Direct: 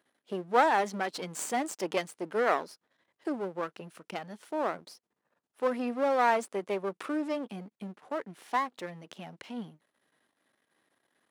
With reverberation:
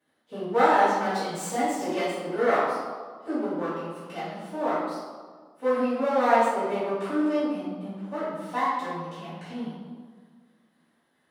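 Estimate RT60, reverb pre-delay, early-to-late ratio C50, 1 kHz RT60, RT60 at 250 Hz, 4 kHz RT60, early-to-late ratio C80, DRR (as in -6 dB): 1.7 s, 3 ms, -1.5 dB, 1.6 s, 1.9 s, 1.0 s, 1.5 dB, -15.0 dB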